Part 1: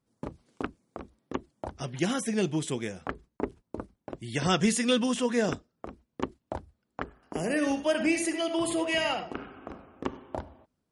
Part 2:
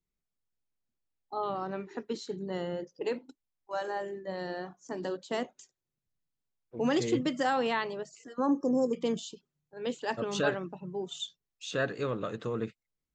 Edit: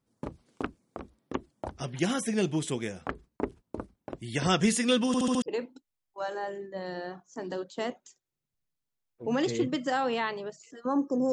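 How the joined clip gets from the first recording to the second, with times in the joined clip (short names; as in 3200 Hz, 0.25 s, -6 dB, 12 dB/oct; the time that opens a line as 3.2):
part 1
5.07 stutter in place 0.07 s, 5 plays
5.42 switch to part 2 from 2.95 s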